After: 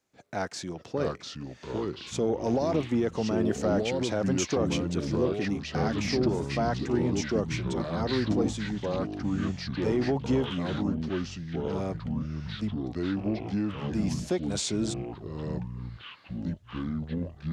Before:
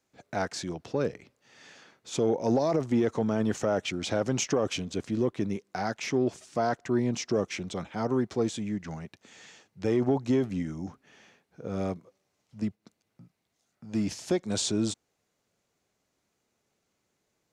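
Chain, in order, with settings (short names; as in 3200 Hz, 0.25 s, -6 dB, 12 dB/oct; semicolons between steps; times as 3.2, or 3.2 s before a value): echoes that change speed 0.558 s, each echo -4 st, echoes 3; gain -1.5 dB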